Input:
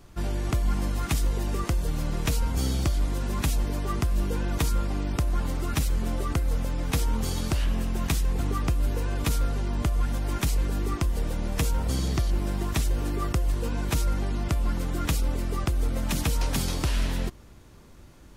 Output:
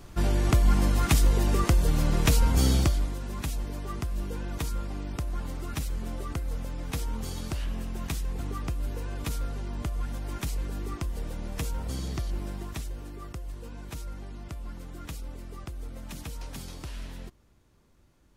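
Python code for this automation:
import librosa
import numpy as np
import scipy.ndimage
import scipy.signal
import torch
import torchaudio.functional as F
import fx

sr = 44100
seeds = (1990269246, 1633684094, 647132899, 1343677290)

y = fx.gain(x, sr, db=fx.line((2.77, 4.0), (3.18, -6.5), (12.42, -6.5), (13.09, -13.0)))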